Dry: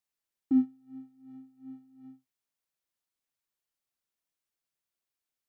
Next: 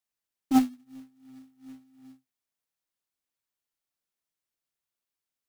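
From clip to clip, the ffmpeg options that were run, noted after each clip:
-af "aeval=exprs='0.158*(cos(1*acos(clip(val(0)/0.158,-1,1)))-cos(1*PI/2))+0.0501*(cos(3*acos(clip(val(0)/0.158,-1,1)))-cos(3*PI/2))+0.001*(cos(4*acos(clip(val(0)/0.158,-1,1)))-cos(4*PI/2))+0.0112*(cos(5*acos(clip(val(0)/0.158,-1,1)))-cos(5*PI/2))+0.002*(cos(6*acos(clip(val(0)/0.158,-1,1)))-cos(6*PI/2))':c=same,bandreject=f=50:t=h:w=6,bandreject=f=100:t=h:w=6,bandreject=f=150:t=h:w=6,bandreject=f=200:t=h:w=6,bandreject=f=250:t=h:w=6,acrusher=bits=4:mode=log:mix=0:aa=0.000001,volume=7dB"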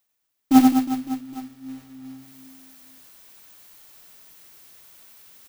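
-af "areverse,acompressor=mode=upward:threshold=-41dB:ratio=2.5,areverse,aexciter=amount=1.8:drive=1.4:freq=12k,aecho=1:1:90|207|359.1|556.8|813.9:0.631|0.398|0.251|0.158|0.1,volume=7.5dB"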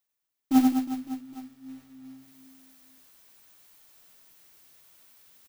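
-filter_complex "[0:a]asplit=2[a][b];[b]adelay=12,volume=-10.5dB[c];[a][c]amix=inputs=2:normalize=0,volume=-8dB"

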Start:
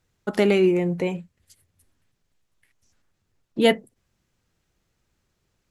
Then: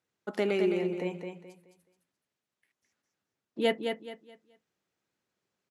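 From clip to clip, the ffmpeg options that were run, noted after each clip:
-af "highpass=220,highshelf=f=6.5k:g=-6,aecho=1:1:213|426|639|852:0.501|0.145|0.0421|0.0122,volume=-8.5dB"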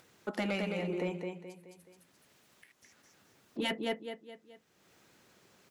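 -filter_complex "[0:a]afftfilt=real='re*lt(hypot(re,im),0.282)':imag='im*lt(hypot(re,im),0.282)':win_size=1024:overlap=0.75,asplit=2[a][b];[b]acompressor=mode=upward:threshold=-38dB:ratio=2.5,volume=-1dB[c];[a][c]amix=inputs=2:normalize=0,asoftclip=type=tanh:threshold=-19dB,volume=-4.5dB"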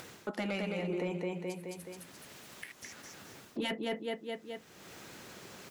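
-af "areverse,acompressor=threshold=-41dB:ratio=6,areverse,alimiter=level_in=17dB:limit=-24dB:level=0:latency=1:release=491,volume=-17dB,volume=14dB"

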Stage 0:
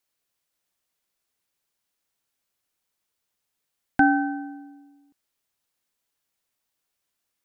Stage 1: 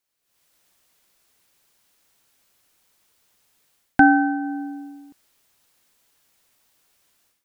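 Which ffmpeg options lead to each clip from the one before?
-af "dynaudnorm=f=220:g=3:m=16dB,volume=-1dB"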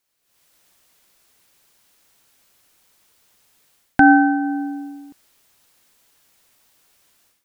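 -af "alimiter=level_in=6dB:limit=-1dB:release=50:level=0:latency=1,volume=-1dB"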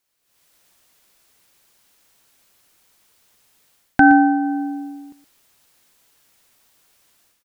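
-af "aecho=1:1:119:0.224"

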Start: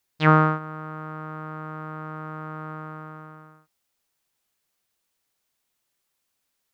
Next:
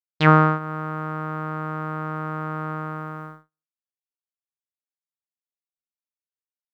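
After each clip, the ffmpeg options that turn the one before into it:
-filter_complex "[0:a]agate=range=-48dB:threshold=-42dB:ratio=16:detection=peak,asplit=2[a][b];[b]acompressor=threshold=-29dB:ratio=6,volume=-1dB[c];[a][c]amix=inputs=2:normalize=0,volume=1dB"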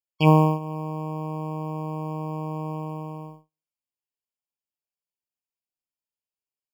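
-af "acrusher=bits=8:mode=log:mix=0:aa=0.000001,afftfilt=real='re*eq(mod(floor(b*sr/1024/1100),2),0)':imag='im*eq(mod(floor(b*sr/1024/1100),2),0)':win_size=1024:overlap=0.75"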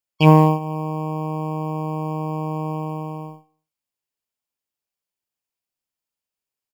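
-filter_complex "[0:a]asplit=2[a][b];[b]asoftclip=type=hard:threshold=-14dB,volume=-10dB[c];[a][c]amix=inputs=2:normalize=0,aecho=1:1:81|162|243:0.112|0.0449|0.018,volume=3dB"

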